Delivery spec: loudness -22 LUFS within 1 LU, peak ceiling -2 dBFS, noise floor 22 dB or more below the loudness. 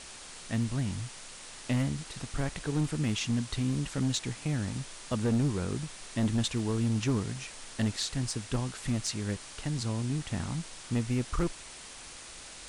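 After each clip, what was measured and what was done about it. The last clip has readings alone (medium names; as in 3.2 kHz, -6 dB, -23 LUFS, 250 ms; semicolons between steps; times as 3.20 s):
clipped samples 1.3%; clipping level -22.0 dBFS; noise floor -47 dBFS; noise floor target -55 dBFS; loudness -32.5 LUFS; peak level -22.0 dBFS; loudness target -22.0 LUFS
-> clip repair -22 dBFS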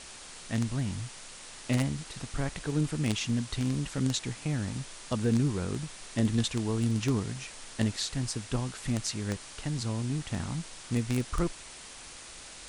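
clipped samples 0.0%; noise floor -47 dBFS; noise floor target -54 dBFS
-> noise reduction 7 dB, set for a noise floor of -47 dBFS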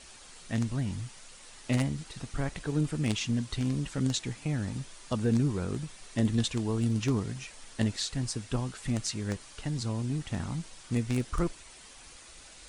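noise floor -51 dBFS; noise floor target -54 dBFS
-> noise reduction 6 dB, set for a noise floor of -51 dBFS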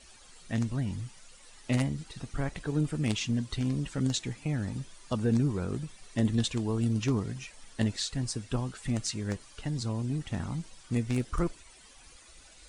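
noise floor -55 dBFS; loudness -32.0 LUFS; peak level -13.0 dBFS; loudness target -22.0 LUFS
-> trim +10 dB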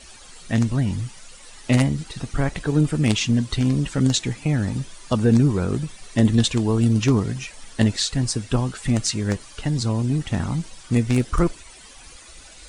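loudness -22.0 LUFS; peak level -3.0 dBFS; noise floor -45 dBFS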